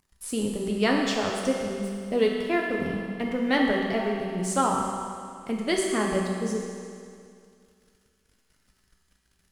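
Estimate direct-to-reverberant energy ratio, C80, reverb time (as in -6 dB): -1.5 dB, 2.5 dB, 2.3 s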